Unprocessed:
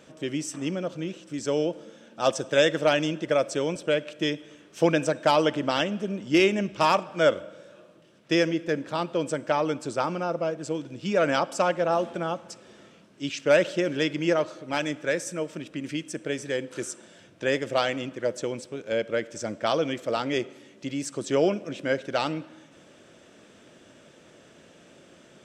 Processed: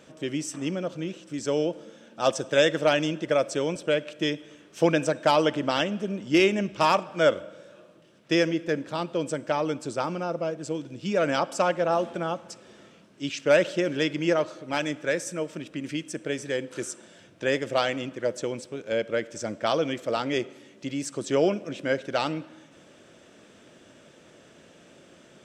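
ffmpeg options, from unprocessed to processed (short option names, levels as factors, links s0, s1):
-filter_complex "[0:a]asettb=1/sr,asplit=3[s0][s1][s2];[s0]atrim=end=8.834[s3];[s1]atrim=start=8.83:end=11.39,asetpts=PTS-STARTPTS,afade=t=in:d=0.004:c=qsin,afade=t=out:st=2.556:d=0.004:c=qsin,equalizer=f=1200:w=0.52:g=-2.5[s4];[s2]atrim=start=11.386[s5];[s3][s4]acrossfade=d=0.004:c1=hsin:c2=qsin[s6];[s6][s5]acrossfade=d=0.004:c1=qsin:c2=hsin"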